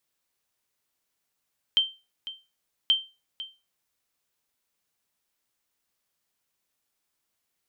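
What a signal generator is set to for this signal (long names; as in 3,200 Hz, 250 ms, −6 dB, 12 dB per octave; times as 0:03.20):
ping with an echo 3,130 Hz, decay 0.28 s, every 1.13 s, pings 2, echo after 0.50 s, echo −15.5 dB −13.5 dBFS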